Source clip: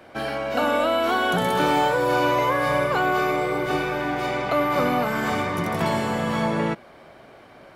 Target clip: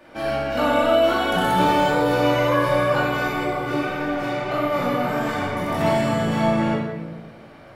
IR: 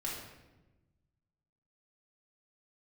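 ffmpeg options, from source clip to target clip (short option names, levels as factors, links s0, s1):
-filter_complex "[0:a]asettb=1/sr,asplit=3[s0][s1][s2];[s0]atrim=end=3.454[s3];[s1]atrim=start=3.45:end=5.68,asetpts=PTS-STARTPTS,afade=t=in:d=0.004:c=qsin,afade=t=out:st=2.226:d=0.004:c=qsin,flanger=delay=20:depth=7.4:speed=1.6[s4];[s2]atrim=start=5.676[s5];[s3][s4]acrossfade=d=0.004:c1=hsin:c2=qsin[s6];[s6][s5]acrossfade=d=0.004:c1=qsin:c2=hsin[s7];[1:a]atrim=start_sample=2205[s8];[s7][s8]afir=irnorm=-1:irlink=0"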